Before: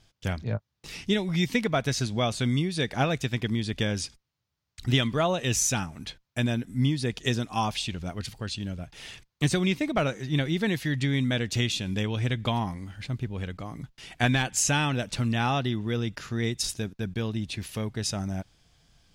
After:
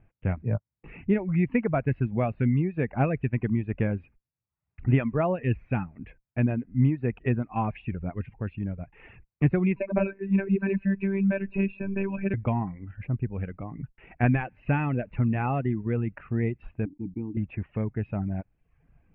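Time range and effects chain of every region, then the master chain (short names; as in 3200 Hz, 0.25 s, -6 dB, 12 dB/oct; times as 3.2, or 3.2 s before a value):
9.76–12.34 ripple EQ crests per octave 1.5, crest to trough 15 dB + robotiser 195 Hz + three-band squash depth 40%
16.85–17.37 vowel filter u + tilt -4.5 dB/oct + sustainer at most 120 dB/s
whole clip: Chebyshev low-pass 2600 Hz, order 6; reverb removal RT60 0.64 s; tilt shelf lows +5 dB, about 650 Hz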